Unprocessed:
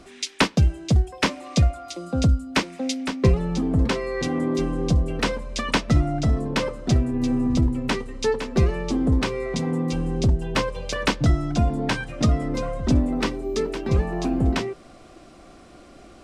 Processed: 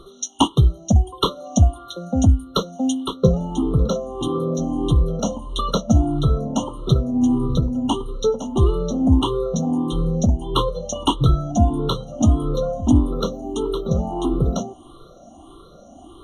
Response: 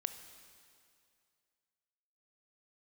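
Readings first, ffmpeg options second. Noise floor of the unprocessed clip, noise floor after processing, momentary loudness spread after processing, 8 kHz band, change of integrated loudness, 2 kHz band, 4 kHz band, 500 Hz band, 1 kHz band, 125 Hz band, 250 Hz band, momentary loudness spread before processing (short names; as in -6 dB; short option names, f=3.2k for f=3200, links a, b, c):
-47 dBFS, -45 dBFS, 7 LU, +3.5 dB, +2.5 dB, under -20 dB, +1.5 dB, +3.0 dB, +3.5 dB, +3.0 dB, +3.5 dB, 6 LU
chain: -af "afftfilt=real='re*pow(10,17/40*sin(2*PI*(0.62*log(max(b,1)*sr/1024/100)/log(2)-(1.6)*(pts-256)/sr)))':imag='im*pow(10,17/40*sin(2*PI*(0.62*log(max(b,1)*sr/1024/100)/log(2)-(1.6)*(pts-256)/sr)))':win_size=1024:overlap=0.75,afftfilt=real='re*eq(mod(floor(b*sr/1024/1400),2),0)':imag='im*eq(mod(floor(b*sr/1024/1400),2),0)':win_size=1024:overlap=0.75"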